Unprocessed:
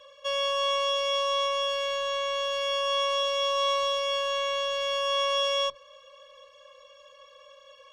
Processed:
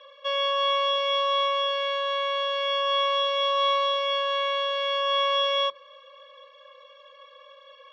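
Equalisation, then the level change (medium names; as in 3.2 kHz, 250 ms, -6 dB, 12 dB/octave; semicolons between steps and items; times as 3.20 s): cabinet simulation 500–3600 Hz, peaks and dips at 610 Hz -5 dB, 920 Hz -6 dB, 1.5 kHz -4 dB, 2.8 kHz -7 dB; +7.0 dB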